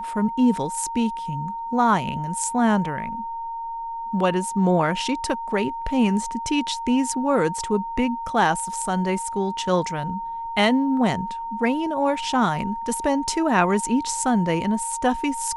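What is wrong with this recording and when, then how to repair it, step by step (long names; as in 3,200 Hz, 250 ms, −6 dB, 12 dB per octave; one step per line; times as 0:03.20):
whistle 920 Hz −28 dBFS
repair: notch filter 920 Hz, Q 30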